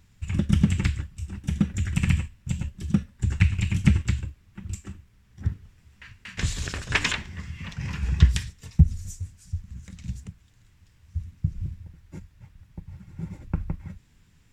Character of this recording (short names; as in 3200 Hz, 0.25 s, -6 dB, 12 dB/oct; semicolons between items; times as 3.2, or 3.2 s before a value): noise floor -59 dBFS; spectral tilt -5.5 dB/oct